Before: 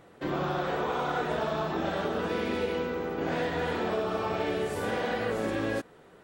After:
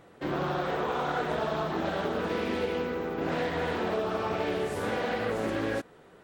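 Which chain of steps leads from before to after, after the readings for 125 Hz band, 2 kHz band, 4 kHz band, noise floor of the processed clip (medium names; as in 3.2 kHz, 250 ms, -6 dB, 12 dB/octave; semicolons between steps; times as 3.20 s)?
0.0 dB, 0.0 dB, 0.0 dB, -55 dBFS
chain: loudspeaker Doppler distortion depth 0.26 ms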